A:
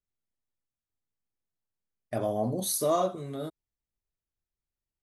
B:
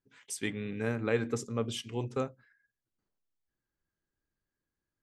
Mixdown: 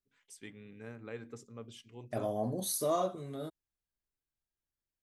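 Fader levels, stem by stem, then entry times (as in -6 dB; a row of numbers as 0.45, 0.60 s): -5.0, -14.5 dB; 0.00, 0.00 s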